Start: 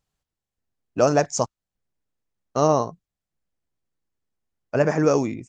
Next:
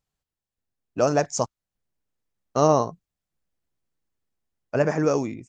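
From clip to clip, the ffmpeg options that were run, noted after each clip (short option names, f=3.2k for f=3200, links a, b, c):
-af "dynaudnorm=f=270:g=9:m=11.5dB,volume=-4dB"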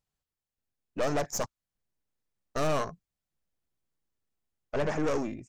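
-af "aeval=exprs='(tanh(17.8*val(0)+0.65)-tanh(0.65))/17.8':c=same"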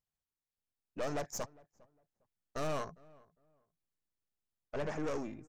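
-filter_complex "[0:a]asplit=2[a][b];[b]adelay=405,lowpass=f=1.4k:p=1,volume=-23.5dB,asplit=2[c][d];[d]adelay=405,lowpass=f=1.4k:p=1,volume=0.25[e];[a][c][e]amix=inputs=3:normalize=0,volume=-8dB"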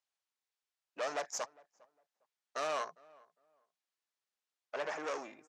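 -af "highpass=680,lowpass=7.1k,volume=4.5dB"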